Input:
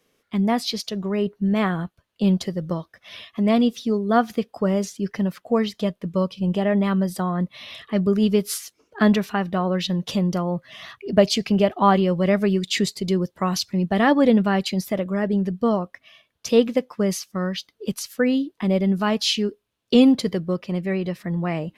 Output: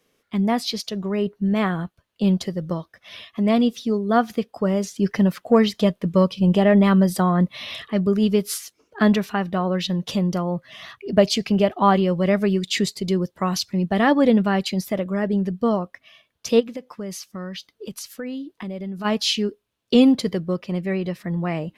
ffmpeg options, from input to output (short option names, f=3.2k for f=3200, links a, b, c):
-filter_complex "[0:a]asettb=1/sr,asplit=3[a][b][c];[a]atrim=end=4.964[d];[b]atrim=start=4.96:end=7.88,asetpts=PTS-STARTPTS,afade=t=in:d=0.004:c=qsin,afade=t=out:st=2.916:d=0.004:c=qsin,acontrast=34[e];[c]atrim=start=7.876[f];[d][e]acrossfade=d=0.004:c1=hsin:c2=qsin[g];[g][f]acrossfade=d=0.004:c1=qsin:c2=hsin,asplit=3[h][i][j];[h]afade=t=out:st=16.59:d=0.02[k];[i]acompressor=threshold=-31dB:ratio=3:attack=3.2:release=140:knee=1:detection=peak,afade=t=in:st=16.59:d=0.02,afade=t=out:st=19.04:d=0.02[l];[j]afade=t=in:st=19.04:d=0.02[m];[k][l][m]amix=inputs=3:normalize=0"